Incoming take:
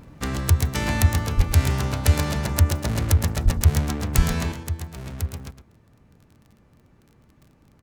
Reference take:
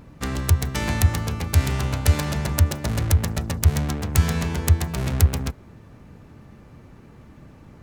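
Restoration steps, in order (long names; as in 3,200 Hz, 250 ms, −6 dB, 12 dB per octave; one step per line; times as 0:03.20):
click removal
high-pass at the plosives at 0:01.36/0:03.44/0:04.16
echo removal 112 ms −11 dB
level correction +10.5 dB, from 0:04.52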